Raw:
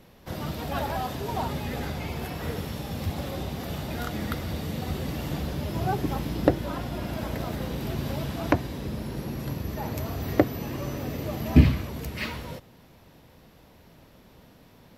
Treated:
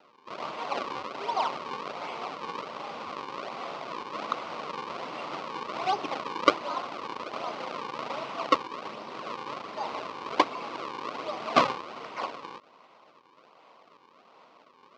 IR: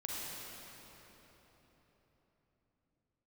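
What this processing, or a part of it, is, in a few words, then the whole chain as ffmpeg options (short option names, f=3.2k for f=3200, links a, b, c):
circuit-bent sampling toy: -af "highpass=110,acrusher=samples=38:mix=1:aa=0.000001:lfo=1:lforange=60.8:lforate=1.3,highpass=600,equalizer=f=1.1k:t=q:w=4:g=9,equalizer=f=1.7k:t=q:w=4:g=-9,equalizer=f=3.5k:t=q:w=4:g=-3,lowpass=f=4.6k:w=0.5412,lowpass=f=4.6k:w=1.3066,volume=3dB"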